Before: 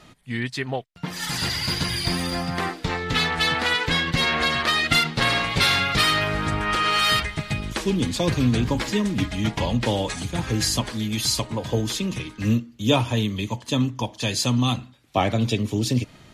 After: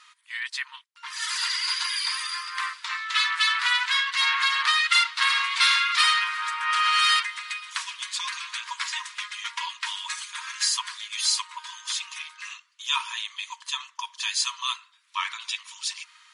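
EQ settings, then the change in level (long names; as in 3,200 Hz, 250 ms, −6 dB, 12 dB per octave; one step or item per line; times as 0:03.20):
linear-phase brick-wall band-pass 910–11,000 Hz
0.0 dB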